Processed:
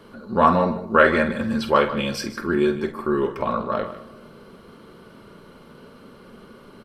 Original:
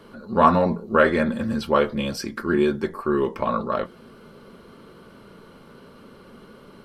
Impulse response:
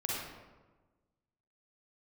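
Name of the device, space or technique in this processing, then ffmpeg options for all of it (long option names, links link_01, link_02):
ducked reverb: -filter_complex "[0:a]asettb=1/sr,asplit=3[link_01][link_02][link_03];[link_01]atrim=end=0.904[link_04];[link_02]atrim=start=0.9:end=2.24,asetpts=PTS-STARTPTS,afade=type=in:duration=0.004:curve=qsin,afade=type=out:start_time=1.336:duration=0.004:curve=qsin,equalizer=frequency=1900:width_type=o:width=2.6:gain=4.5[link_05];[link_03]atrim=start=2.236[link_06];[link_04][link_05]acrossfade=duration=0.004:curve1=hsin:curve2=qsin[link_07];[link_07][link_06]acrossfade=duration=0.004:curve1=qsin:curve2=hsin,asplit=2[link_08][link_09];[link_09]adelay=49,volume=-10.5dB[link_10];[link_08][link_10]amix=inputs=2:normalize=0,aecho=1:1:152:0.2,asplit=3[link_11][link_12][link_13];[1:a]atrim=start_sample=2205[link_14];[link_12][link_14]afir=irnorm=-1:irlink=0[link_15];[link_13]apad=whole_len=310699[link_16];[link_15][link_16]sidechaincompress=threshold=-21dB:ratio=8:attack=16:release=1300,volume=-15.5dB[link_17];[link_11][link_17]amix=inputs=2:normalize=0,volume=-1dB"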